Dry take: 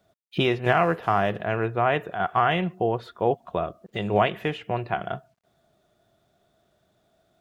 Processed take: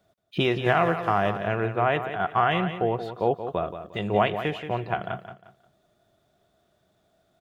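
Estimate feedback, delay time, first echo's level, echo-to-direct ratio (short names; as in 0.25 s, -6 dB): 29%, 0.177 s, -10.0 dB, -9.5 dB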